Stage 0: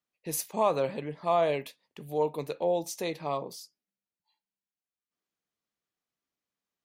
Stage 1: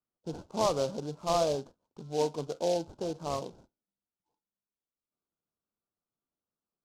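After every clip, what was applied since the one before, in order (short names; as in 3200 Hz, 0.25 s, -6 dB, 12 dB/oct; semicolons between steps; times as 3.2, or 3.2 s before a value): in parallel at -9 dB: sample-and-hold 37×; on the sum: steep low-pass 1500 Hz 96 dB/oct; noise-modulated delay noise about 4400 Hz, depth 0.049 ms; gain -2.5 dB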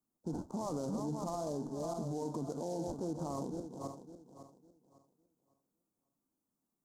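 regenerating reverse delay 0.277 s, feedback 51%, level -12.5 dB; EQ curve 110 Hz 0 dB, 270 Hz +9 dB, 500 Hz -4 dB, 900 Hz +2 dB, 1600 Hz -8 dB, 2600 Hz -20 dB, 7000 Hz +2 dB; limiter -32.5 dBFS, peak gain reduction 17.5 dB; gain +3 dB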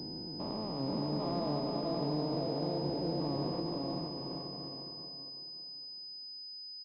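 stepped spectrum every 0.4 s; bouncing-ball echo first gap 0.47 s, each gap 0.75×, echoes 5; pulse-width modulation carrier 5000 Hz; gain +4 dB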